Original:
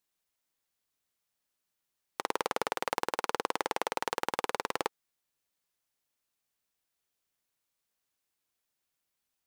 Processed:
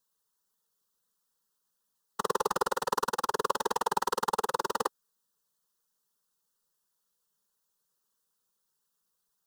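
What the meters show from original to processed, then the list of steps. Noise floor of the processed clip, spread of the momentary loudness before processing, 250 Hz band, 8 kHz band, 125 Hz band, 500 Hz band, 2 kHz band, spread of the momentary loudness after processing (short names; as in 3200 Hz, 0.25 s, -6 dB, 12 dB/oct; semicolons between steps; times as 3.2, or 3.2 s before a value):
-80 dBFS, 3 LU, +1.5 dB, +4.5 dB, +4.0 dB, +3.0 dB, -1.0 dB, 4 LU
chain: whisperiser; fixed phaser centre 450 Hz, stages 8; gain +5.5 dB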